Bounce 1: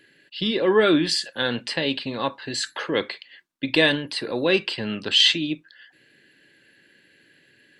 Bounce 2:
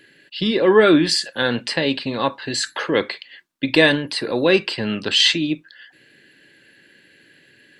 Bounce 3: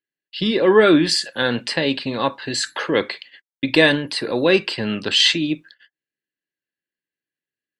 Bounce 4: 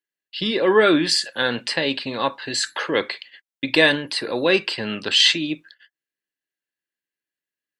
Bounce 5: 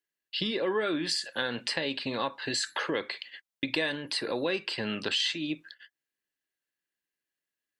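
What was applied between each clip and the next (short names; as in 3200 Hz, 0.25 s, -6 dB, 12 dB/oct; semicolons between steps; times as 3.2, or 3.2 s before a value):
dynamic EQ 3200 Hz, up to -5 dB, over -36 dBFS, Q 2.6; gain +5 dB
gate -41 dBFS, range -41 dB
low shelf 360 Hz -7 dB
compressor 4:1, threshold -29 dBFS, peak gain reduction 15.5 dB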